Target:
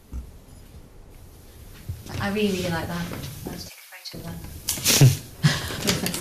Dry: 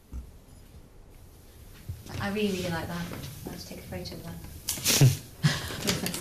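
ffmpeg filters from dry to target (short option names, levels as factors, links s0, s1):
-filter_complex "[0:a]asplit=3[s0][s1][s2];[s0]afade=t=out:st=3.68:d=0.02[s3];[s1]highpass=f=980:w=0.5412,highpass=f=980:w=1.3066,afade=t=in:st=3.68:d=0.02,afade=t=out:st=4.13:d=0.02[s4];[s2]afade=t=in:st=4.13:d=0.02[s5];[s3][s4][s5]amix=inputs=3:normalize=0,volume=1.78"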